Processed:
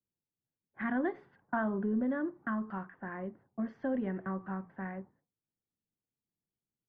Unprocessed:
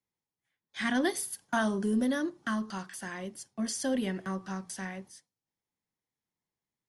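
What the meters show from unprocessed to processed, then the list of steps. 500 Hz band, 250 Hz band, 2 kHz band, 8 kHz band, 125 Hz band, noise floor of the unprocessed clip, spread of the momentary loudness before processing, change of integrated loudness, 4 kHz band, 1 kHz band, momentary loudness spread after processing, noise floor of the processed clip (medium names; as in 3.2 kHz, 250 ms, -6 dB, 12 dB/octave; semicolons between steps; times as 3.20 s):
-3.0 dB, -3.0 dB, -5.5 dB, under -40 dB, -2.0 dB, under -85 dBFS, 12 LU, -3.5 dB, under -25 dB, -2.5 dB, 11 LU, under -85 dBFS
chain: level-controlled noise filter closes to 420 Hz, open at -29.5 dBFS; low-pass 1.7 kHz 24 dB/octave; compression 1.5:1, threshold -34 dBFS, peak gain reduction 4 dB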